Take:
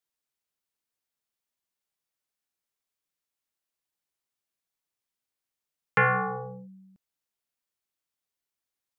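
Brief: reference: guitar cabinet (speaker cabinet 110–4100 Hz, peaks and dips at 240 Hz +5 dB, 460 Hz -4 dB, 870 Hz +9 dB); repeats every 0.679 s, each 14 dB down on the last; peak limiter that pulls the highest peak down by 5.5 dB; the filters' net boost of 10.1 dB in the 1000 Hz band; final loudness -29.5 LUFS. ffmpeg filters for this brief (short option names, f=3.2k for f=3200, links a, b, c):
-af "equalizer=f=1k:t=o:g=8.5,alimiter=limit=-14dB:level=0:latency=1,highpass=110,equalizer=f=240:t=q:w=4:g=5,equalizer=f=460:t=q:w=4:g=-4,equalizer=f=870:t=q:w=4:g=9,lowpass=f=4.1k:w=0.5412,lowpass=f=4.1k:w=1.3066,aecho=1:1:679|1358:0.2|0.0399,volume=-5.5dB"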